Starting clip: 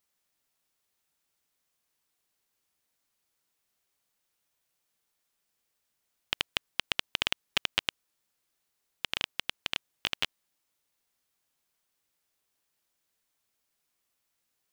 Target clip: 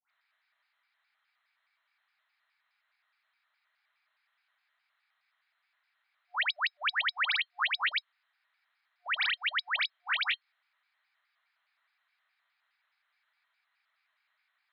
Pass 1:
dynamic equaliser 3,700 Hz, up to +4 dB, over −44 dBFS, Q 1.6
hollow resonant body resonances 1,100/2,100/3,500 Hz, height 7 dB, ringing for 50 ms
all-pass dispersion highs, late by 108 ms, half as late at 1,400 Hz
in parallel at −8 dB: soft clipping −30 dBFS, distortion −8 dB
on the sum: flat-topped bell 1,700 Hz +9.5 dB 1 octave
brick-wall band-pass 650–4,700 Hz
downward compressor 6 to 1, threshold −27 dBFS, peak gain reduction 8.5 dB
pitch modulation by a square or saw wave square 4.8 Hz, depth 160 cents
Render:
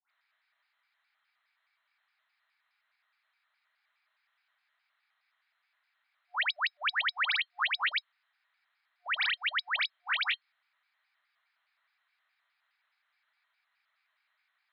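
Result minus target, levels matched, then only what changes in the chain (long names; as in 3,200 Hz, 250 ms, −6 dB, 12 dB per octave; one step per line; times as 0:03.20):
soft clipping: distortion +9 dB
change: soft clipping −21 dBFS, distortion −17 dB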